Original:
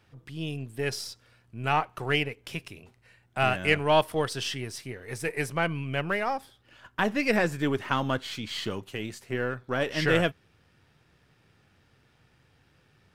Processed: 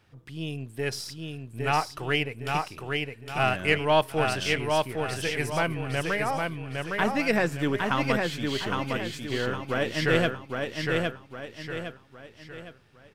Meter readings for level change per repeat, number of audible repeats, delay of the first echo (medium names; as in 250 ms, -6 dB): -8.0 dB, 4, 810 ms